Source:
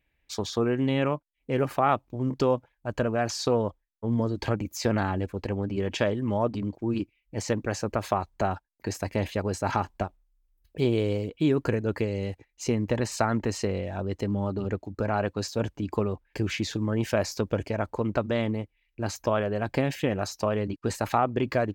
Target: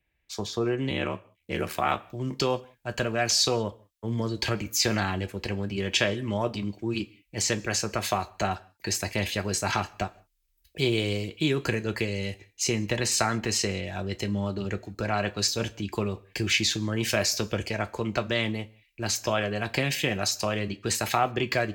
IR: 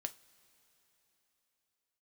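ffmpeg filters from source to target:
-filter_complex "[0:a]acrossover=split=240|890|1900[a][b][c][d];[d]dynaudnorm=f=620:g=3:m=13dB[e];[a][b][c][e]amix=inputs=4:normalize=0,asplit=3[f][g][h];[f]afade=t=out:st=0.89:d=0.02[i];[g]aeval=exprs='val(0)*sin(2*PI*39*n/s)':c=same,afade=t=in:st=0.89:d=0.02,afade=t=out:st=1.95:d=0.02[j];[h]afade=t=in:st=1.95:d=0.02[k];[i][j][k]amix=inputs=3:normalize=0[l];[1:a]atrim=start_sample=2205,afade=t=out:st=0.28:d=0.01,atrim=end_sample=12789,asetrate=52920,aresample=44100[m];[l][m]afir=irnorm=-1:irlink=0,volume=1.5dB"

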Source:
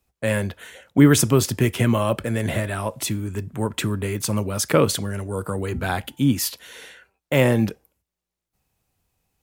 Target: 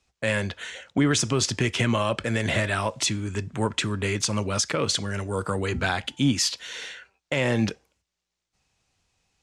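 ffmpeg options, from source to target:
-filter_complex "[0:a]lowpass=f=6.8k:w=0.5412,lowpass=f=6.8k:w=1.3066,highshelf=f=3.8k:g=-11,asplit=2[a][b];[b]asoftclip=type=tanh:threshold=-11.5dB,volume=-10dB[c];[a][c]amix=inputs=2:normalize=0,crystalizer=i=9:c=0,alimiter=limit=-8.5dB:level=0:latency=1:release=279,volume=-4dB"

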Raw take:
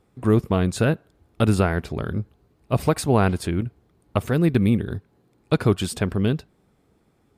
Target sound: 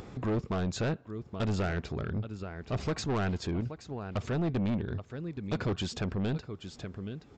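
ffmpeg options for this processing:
-af "aecho=1:1:825:0.112,acompressor=mode=upward:threshold=-24dB:ratio=2.5,aresample=16000,asoftclip=type=tanh:threshold=-21.5dB,aresample=44100,volume=-4.5dB"

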